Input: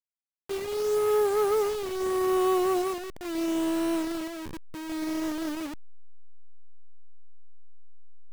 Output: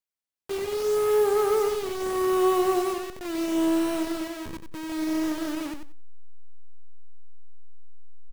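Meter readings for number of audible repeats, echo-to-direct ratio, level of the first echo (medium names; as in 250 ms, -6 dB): 2, -8.0 dB, -8.0 dB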